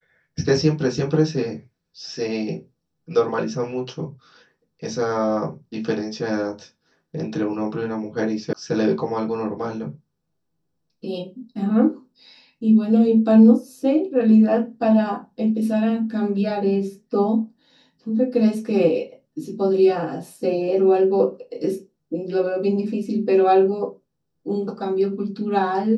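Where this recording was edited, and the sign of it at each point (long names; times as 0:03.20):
0:08.53: cut off before it has died away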